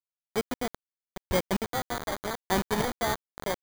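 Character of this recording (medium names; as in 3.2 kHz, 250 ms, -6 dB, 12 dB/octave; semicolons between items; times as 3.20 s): aliases and images of a low sample rate 2.7 kHz, jitter 0%; chopped level 0.8 Hz, depth 65%, duty 25%; a quantiser's noise floor 6-bit, dither none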